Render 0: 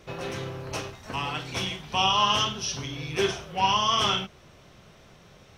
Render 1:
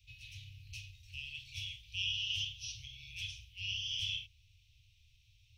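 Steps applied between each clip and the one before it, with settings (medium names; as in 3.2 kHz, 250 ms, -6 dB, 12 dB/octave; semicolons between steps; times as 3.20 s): Chebyshev band-stop 110–2500 Hz, order 5; peaking EQ 8.7 kHz -9 dB 1.9 oct; trim -6.5 dB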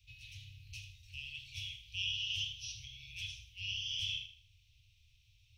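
thinning echo 79 ms, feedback 35%, level -11 dB; trim -1 dB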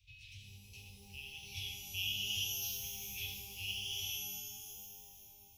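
random-step tremolo; pitch-shifted reverb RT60 2.7 s, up +12 st, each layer -2 dB, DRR 6 dB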